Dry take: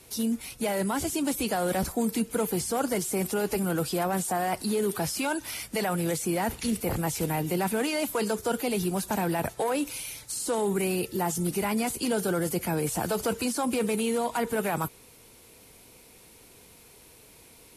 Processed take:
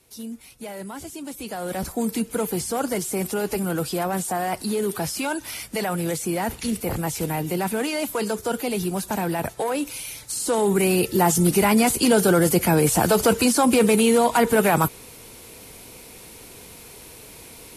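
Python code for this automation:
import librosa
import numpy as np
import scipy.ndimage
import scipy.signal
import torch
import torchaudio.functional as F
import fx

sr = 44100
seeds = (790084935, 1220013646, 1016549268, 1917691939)

y = fx.gain(x, sr, db=fx.line((1.3, -7.0), (2.03, 2.5), (9.93, 2.5), (11.25, 10.0)))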